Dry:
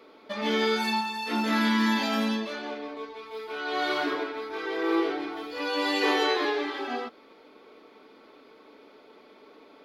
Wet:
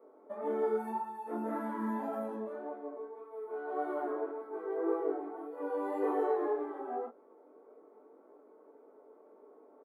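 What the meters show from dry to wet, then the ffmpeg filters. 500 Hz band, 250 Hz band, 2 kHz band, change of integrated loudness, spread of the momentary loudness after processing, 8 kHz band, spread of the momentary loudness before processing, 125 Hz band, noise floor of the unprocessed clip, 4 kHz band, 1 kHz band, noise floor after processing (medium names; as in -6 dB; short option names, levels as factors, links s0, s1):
-3.5 dB, -10.5 dB, -20.5 dB, -8.5 dB, 11 LU, under -20 dB, 13 LU, no reading, -54 dBFS, under -40 dB, -8.0 dB, -60 dBFS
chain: -filter_complex "[0:a]firequalizer=gain_entry='entry(140,0);entry(400,8);entry(670,7);entry(2600,-22);entry(4600,-24);entry(8800,11)':delay=0.05:min_phase=1,flanger=delay=19.5:depth=3.7:speed=1.8,acrossover=split=200 3000:gain=0.0891 1 0.158[s0][s1][s2];[s0][s1][s2]amix=inputs=3:normalize=0,volume=0.398"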